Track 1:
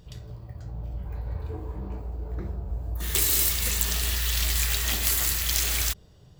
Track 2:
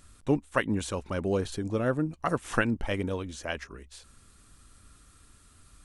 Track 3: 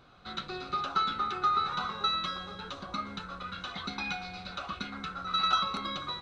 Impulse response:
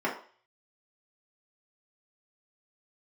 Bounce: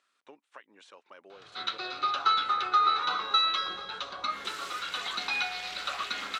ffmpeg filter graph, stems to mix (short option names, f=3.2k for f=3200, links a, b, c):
-filter_complex "[0:a]volume=20.5dB,asoftclip=hard,volume=-20.5dB,adelay=1300,volume=-7.5dB[a];[1:a]highpass=f=1.2k:p=1,acompressor=threshold=-38dB:ratio=10,volume=-7.5dB[b];[2:a]aemphasis=mode=production:type=riaa,adelay=1300,volume=3dB[c];[a][b][c]amix=inputs=3:normalize=0,highpass=360,lowpass=3.7k"